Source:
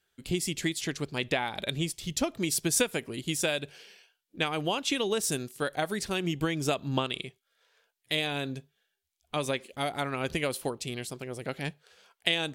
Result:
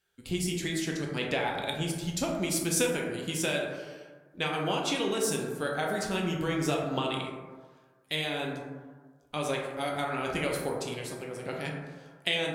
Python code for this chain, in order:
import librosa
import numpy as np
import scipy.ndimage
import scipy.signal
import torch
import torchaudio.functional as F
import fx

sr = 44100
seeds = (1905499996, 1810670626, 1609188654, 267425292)

y = fx.rev_plate(x, sr, seeds[0], rt60_s=1.5, hf_ratio=0.3, predelay_ms=0, drr_db=-1.5)
y = y * 10.0 ** (-3.5 / 20.0)